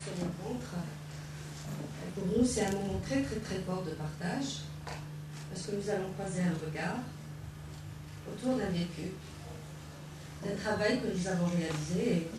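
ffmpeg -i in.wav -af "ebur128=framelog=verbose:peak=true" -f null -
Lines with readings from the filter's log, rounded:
Integrated loudness:
  I:         -35.8 LUFS
  Threshold: -46.0 LUFS
Loudness range:
  LRA:         4.2 LU
  Threshold: -56.3 LUFS
  LRA low:   -38.7 LUFS
  LRA high:  -34.5 LUFS
True peak:
  Peak:      -16.5 dBFS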